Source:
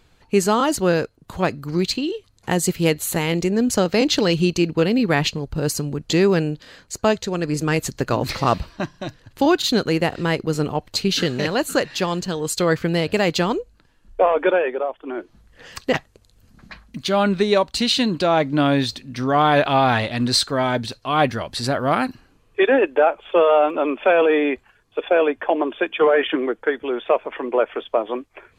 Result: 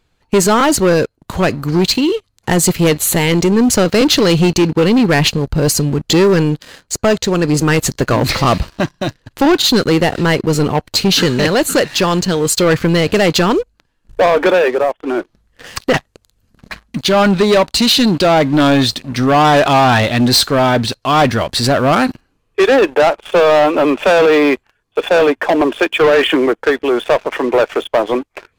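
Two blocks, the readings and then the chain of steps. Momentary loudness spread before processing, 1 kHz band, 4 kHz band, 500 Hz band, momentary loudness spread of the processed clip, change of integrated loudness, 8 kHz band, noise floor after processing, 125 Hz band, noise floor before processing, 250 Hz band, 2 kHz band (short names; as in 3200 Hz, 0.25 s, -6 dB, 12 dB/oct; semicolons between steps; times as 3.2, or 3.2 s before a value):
10 LU, +6.5 dB, +8.5 dB, +6.5 dB, 8 LU, +7.0 dB, +10.0 dB, -64 dBFS, +8.5 dB, -58 dBFS, +7.5 dB, +7.0 dB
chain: sample leveller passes 3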